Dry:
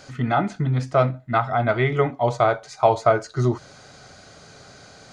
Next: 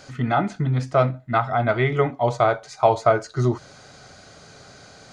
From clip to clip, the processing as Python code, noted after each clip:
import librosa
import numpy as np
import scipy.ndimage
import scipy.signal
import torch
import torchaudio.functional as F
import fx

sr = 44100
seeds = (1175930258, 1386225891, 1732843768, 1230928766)

y = x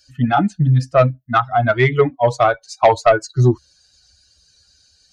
y = fx.bin_expand(x, sr, power=2.0)
y = fx.cheby_harmonics(y, sr, harmonics=(5,), levels_db=(-15,), full_scale_db=-5.5)
y = y * librosa.db_to_amplitude(5.0)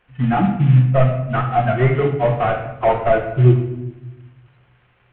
y = fx.cvsd(x, sr, bps=16000)
y = fx.room_shoebox(y, sr, seeds[0], volume_m3=360.0, walls='mixed', distance_m=0.91)
y = y * librosa.db_to_amplitude(-2.0)